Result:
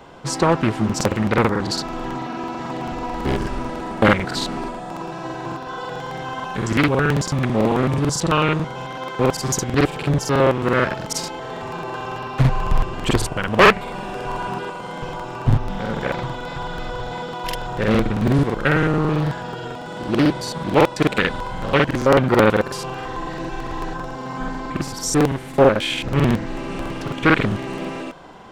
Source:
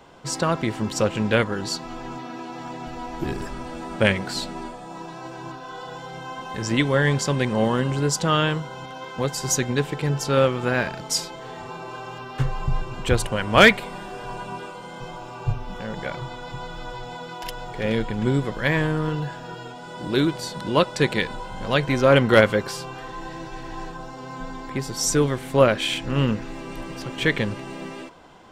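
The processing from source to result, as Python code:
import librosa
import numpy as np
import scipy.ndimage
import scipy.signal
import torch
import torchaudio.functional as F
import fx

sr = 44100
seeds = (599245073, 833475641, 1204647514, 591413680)

y = fx.high_shelf(x, sr, hz=9100.0, db=5.5)
y = fx.rider(y, sr, range_db=3, speed_s=0.5)
y = fx.high_shelf(y, sr, hz=4200.0, db=-7.5)
y = fx.buffer_crackle(y, sr, first_s=0.85, period_s=0.11, block=2048, kind='repeat')
y = fx.doppler_dist(y, sr, depth_ms=0.93)
y = y * librosa.db_to_amplitude(4.0)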